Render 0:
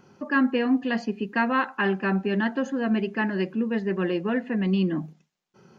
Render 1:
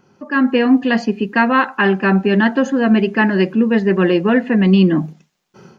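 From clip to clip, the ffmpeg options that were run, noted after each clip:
-af "dynaudnorm=f=270:g=3:m=13dB"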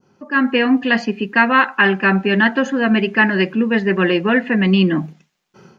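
-af "adynamicequalizer=threshold=0.0251:dfrequency=2200:dqfactor=0.72:tfrequency=2200:tqfactor=0.72:attack=5:release=100:ratio=0.375:range=4:mode=boostabove:tftype=bell,volume=-3dB"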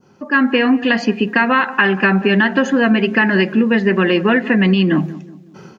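-filter_complex "[0:a]alimiter=limit=-6.5dB:level=0:latency=1:release=138,acompressor=threshold=-16dB:ratio=6,asplit=2[a][b];[b]adelay=185,lowpass=f=990:p=1,volume=-16dB,asplit=2[c][d];[d]adelay=185,lowpass=f=990:p=1,volume=0.45,asplit=2[e][f];[f]adelay=185,lowpass=f=990:p=1,volume=0.45,asplit=2[g][h];[h]adelay=185,lowpass=f=990:p=1,volume=0.45[i];[a][c][e][g][i]amix=inputs=5:normalize=0,volume=6dB"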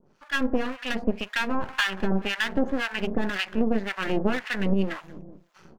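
-filter_complex "[0:a]aeval=exprs='max(val(0),0)':c=same,acrossover=split=960[a][b];[a]aeval=exprs='val(0)*(1-1/2+1/2*cos(2*PI*1.9*n/s))':c=same[c];[b]aeval=exprs='val(0)*(1-1/2-1/2*cos(2*PI*1.9*n/s))':c=same[d];[c][d]amix=inputs=2:normalize=0,volume=-3.5dB"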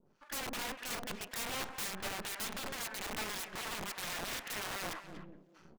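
-filter_complex "[0:a]aeval=exprs='(mod(17.8*val(0)+1,2)-1)/17.8':c=same,asplit=2[a][b];[b]adelay=240,highpass=300,lowpass=3.4k,asoftclip=type=hard:threshold=-34dB,volume=-8dB[c];[a][c]amix=inputs=2:normalize=0,volume=-8dB"

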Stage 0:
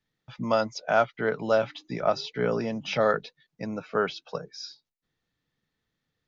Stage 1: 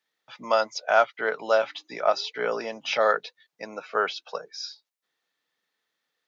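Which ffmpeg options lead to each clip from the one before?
-af "highpass=560,volume=4dB"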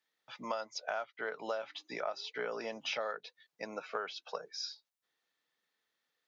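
-af "acompressor=threshold=-30dB:ratio=8,volume=-4dB"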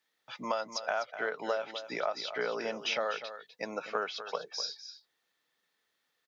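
-af "aecho=1:1:250:0.266,volume=4.5dB"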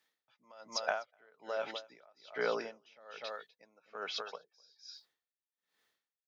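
-af "aeval=exprs='val(0)*pow(10,-33*(0.5-0.5*cos(2*PI*1.2*n/s))/20)':c=same,volume=2dB"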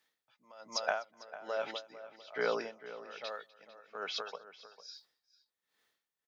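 -filter_complex "[0:a]asplit=2[a][b];[b]adelay=449,volume=-14dB,highshelf=f=4k:g=-10.1[c];[a][c]amix=inputs=2:normalize=0,volume=1dB"

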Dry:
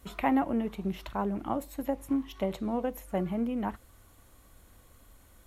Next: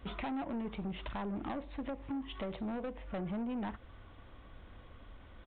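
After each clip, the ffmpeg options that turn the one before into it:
-af "acompressor=threshold=-35dB:ratio=4,aresample=8000,asoftclip=type=tanh:threshold=-38.5dB,aresample=44100,volume=4.5dB"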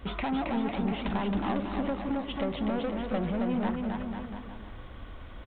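-af "aecho=1:1:270|499.5|694.6|860.4|1001:0.631|0.398|0.251|0.158|0.1,volume=7dB"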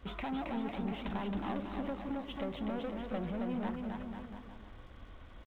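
-af "aeval=exprs='sgn(val(0))*max(abs(val(0))-0.00112,0)':c=same,volume=-7dB"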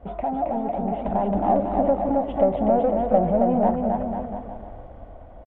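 -af "dynaudnorm=f=260:g=9:m=6.5dB,firequalizer=gain_entry='entry(380,0);entry(680,14);entry(1100,-7);entry(3800,-21)':delay=0.05:min_phase=1,volume=7dB"

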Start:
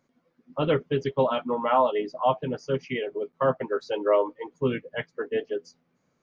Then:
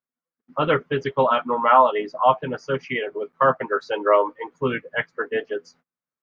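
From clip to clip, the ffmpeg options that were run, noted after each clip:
-af "agate=range=-30dB:threshold=-56dB:ratio=16:detection=peak,equalizer=f=1.4k:w=0.81:g=11.5"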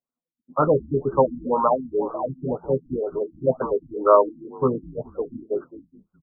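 -filter_complex "[0:a]asplit=4[a][b][c][d];[b]adelay=210,afreqshift=-82,volume=-17dB[e];[c]adelay=420,afreqshift=-164,volume=-26.1dB[f];[d]adelay=630,afreqshift=-246,volume=-35.2dB[g];[a][e][f][g]amix=inputs=4:normalize=0,afftfilt=real='re*lt(b*sr/1024,300*pow(1600/300,0.5+0.5*sin(2*PI*2*pts/sr)))':imag='im*lt(b*sr/1024,300*pow(1600/300,0.5+0.5*sin(2*PI*2*pts/sr)))':win_size=1024:overlap=0.75,volume=2.5dB"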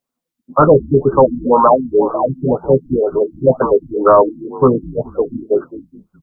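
-af "apsyclip=12.5dB,volume=-1.5dB"

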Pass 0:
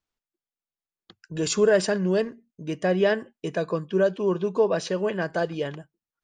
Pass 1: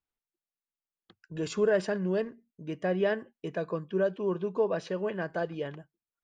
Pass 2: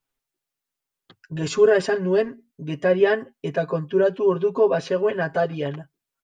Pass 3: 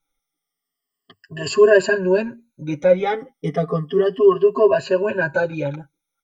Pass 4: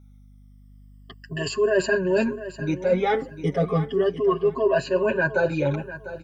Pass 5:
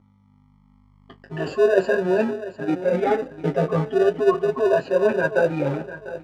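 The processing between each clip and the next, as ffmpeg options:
-af "bass=f=250:g=0,treble=f=4k:g=-11,volume=-6dB"
-af "aecho=1:1:7.4:0.97,volume=6.5dB"
-af "afftfilt=real='re*pow(10,22/40*sin(2*PI*(1.4*log(max(b,1)*sr/1024/100)/log(2)-(-0.33)*(pts-256)/sr)))':imag='im*pow(10,22/40*sin(2*PI*(1.4*log(max(b,1)*sr/1024/100)/log(2)-(-0.33)*(pts-256)/sr)))':win_size=1024:overlap=0.75,volume=-1.5dB"
-af "areverse,acompressor=threshold=-22dB:ratio=6,areverse,aeval=exprs='val(0)+0.00251*(sin(2*PI*50*n/s)+sin(2*PI*2*50*n/s)/2+sin(2*PI*3*50*n/s)/3+sin(2*PI*4*50*n/s)/4+sin(2*PI*5*50*n/s)/5)':c=same,aecho=1:1:699|1398|2097:0.2|0.0479|0.0115,volume=3.5dB"
-filter_complex "[0:a]flanger=delay=9.5:depth=9.8:regen=-37:speed=0.4:shape=sinusoidal,asplit=2[a][b];[b]acrusher=samples=41:mix=1:aa=0.000001,volume=-4.5dB[c];[a][c]amix=inputs=2:normalize=0,bandpass=f=610:t=q:w=0.56:csg=0,volume=5.5dB"

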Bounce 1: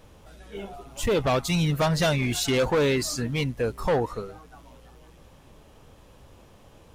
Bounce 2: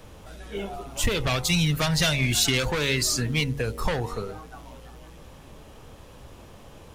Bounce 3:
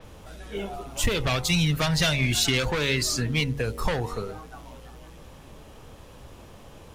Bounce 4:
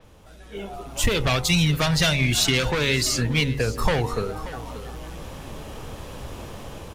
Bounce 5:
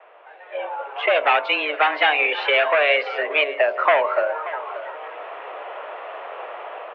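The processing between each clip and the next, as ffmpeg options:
-filter_complex "[0:a]bandreject=f=46.79:t=h:w=4,bandreject=f=93.58:t=h:w=4,bandreject=f=140.37:t=h:w=4,bandreject=f=187.16:t=h:w=4,bandreject=f=233.95:t=h:w=4,bandreject=f=280.74:t=h:w=4,bandreject=f=327.53:t=h:w=4,bandreject=f=374.32:t=h:w=4,bandreject=f=421.11:t=h:w=4,bandreject=f=467.9:t=h:w=4,bandreject=f=514.69:t=h:w=4,bandreject=f=561.48:t=h:w=4,bandreject=f=608.27:t=h:w=4,bandreject=f=655.06:t=h:w=4,bandreject=f=701.85:t=h:w=4,bandreject=f=748.64:t=h:w=4,bandreject=f=795.43:t=h:w=4,bandreject=f=842.22:t=h:w=4,bandreject=f=889.01:t=h:w=4,bandreject=f=935.8:t=h:w=4,bandreject=f=982.59:t=h:w=4,bandreject=f=1.02938k:t=h:w=4,acrossover=split=130|1700[a][b][c];[b]acompressor=threshold=-34dB:ratio=6[d];[a][d][c]amix=inputs=3:normalize=0,volume=6dB"
-af "adynamicequalizer=threshold=0.0112:dfrequency=5800:dqfactor=0.7:tfrequency=5800:tqfactor=0.7:attack=5:release=100:ratio=0.375:range=2:mode=cutabove:tftype=highshelf"
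-af "aecho=1:1:582:0.15,dynaudnorm=f=240:g=7:m=15dB,volume=-5dB"
-af "highpass=f=340:t=q:w=0.5412,highpass=f=340:t=q:w=1.307,lowpass=f=2.5k:t=q:w=0.5176,lowpass=f=2.5k:t=q:w=0.7071,lowpass=f=2.5k:t=q:w=1.932,afreqshift=150,volume=8dB"

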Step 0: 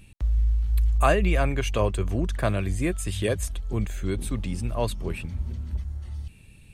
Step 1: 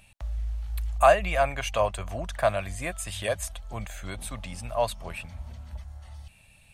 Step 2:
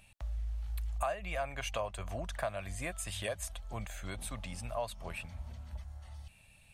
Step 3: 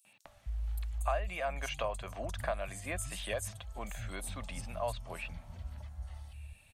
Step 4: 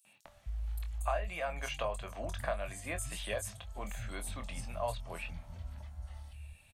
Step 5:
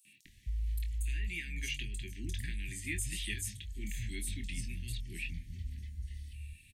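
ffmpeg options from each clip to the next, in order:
-af "lowshelf=f=500:t=q:w=3:g=-9"
-af "acompressor=threshold=-29dB:ratio=4,volume=-4.5dB"
-filter_complex "[0:a]acrossover=split=170|5200[a][b][c];[b]adelay=50[d];[a]adelay=250[e];[e][d][c]amix=inputs=3:normalize=0,volume=1dB"
-filter_complex "[0:a]asplit=2[a][b];[b]adelay=24,volume=-8.5dB[c];[a][c]amix=inputs=2:normalize=0,volume=-1dB"
-af "asuperstop=centerf=820:order=20:qfactor=0.58,volume=3dB"

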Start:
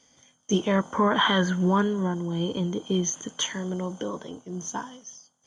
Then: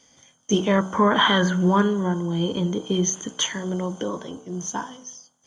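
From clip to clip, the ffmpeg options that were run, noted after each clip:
-af "bandreject=f=62.88:t=h:w=4,bandreject=f=125.76:t=h:w=4,bandreject=f=188.64:t=h:w=4,bandreject=f=251.52:t=h:w=4,bandreject=f=314.4:t=h:w=4,bandreject=f=377.28:t=h:w=4,bandreject=f=440.16:t=h:w=4,bandreject=f=503.04:t=h:w=4,bandreject=f=565.92:t=h:w=4,bandreject=f=628.8:t=h:w=4,bandreject=f=691.68:t=h:w=4,bandreject=f=754.56:t=h:w=4,bandreject=f=817.44:t=h:w=4,bandreject=f=880.32:t=h:w=4,bandreject=f=943.2:t=h:w=4,bandreject=f=1.00608k:t=h:w=4,bandreject=f=1.06896k:t=h:w=4,bandreject=f=1.13184k:t=h:w=4,bandreject=f=1.19472k:t=h:w=4,bandreject=f=1.2576k:t=h:w=4,bandreject=f=1.32048k:t=h:w=4,bandreject=f=1.38336k:t=h:w=4,bandreject=f=1.44624k:t=h:w=4,bandreject=f=1.50912k:t=h:w=4,bandreject=f=1.572k:t=h:w=4,volume=4dB"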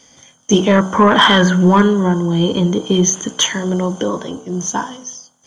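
-af "acontrast=84,volume=2dB"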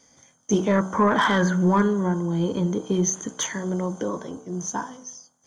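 -af "equalizer=f=3k:w=2.9:g=-11,volume=-8.5dB"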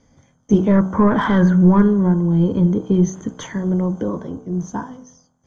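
-af "aemphasis=mode=reproduction:type=riaa"

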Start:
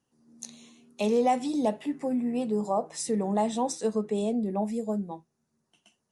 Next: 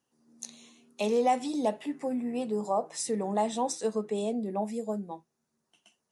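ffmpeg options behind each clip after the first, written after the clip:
-af "lowshelf=f=190:g=-10.5"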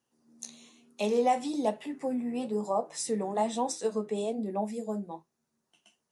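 -af "flanger=delay=8.4:depth=5.4:regen=-59:speed=1.1:shape=sinusoidal,volume=3.5dB"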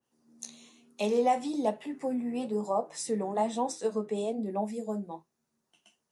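-af "adynamicequalizer=threshold=0.00631:dfrequency=2100:dqfactor=0.7:tfrequency=2100:tqfactor=0.7:attack=5:release=100:ratio=0.375:range=2:mode=cutabove:tftype=highshelf"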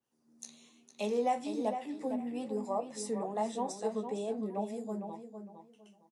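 -filter_complex "[0:a]asplit=2[a][b];[b]adelay=457,lowpass=f=3.5k:p=1,volume=-8dB,asplit=2[c][d];[d]adelay=457,lowpass=f=3.5k:p=1,volume=0.24,asplit=2[e][f];[f]adelay=457,lowpass=f=3.5k:p=1,volume=0.24[g];[a][c][e][g]amix=inputs=4:normalize=0,volume=-5dB"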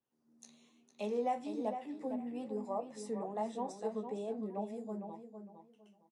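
-af "highshelf=f=3.4k:g=-8.5,volume=-3.5dB"

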